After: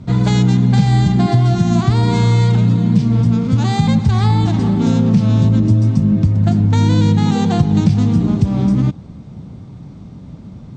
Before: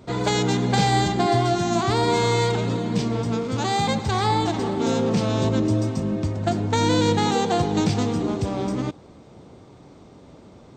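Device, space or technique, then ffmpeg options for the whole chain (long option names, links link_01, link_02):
jukebox: -af "lowpass=7800,lowshelf=frequency=270:width_type=q:width=1.5:gain=12.5,acompressor=threshold=-11dB:ratio=4,volume=2dB"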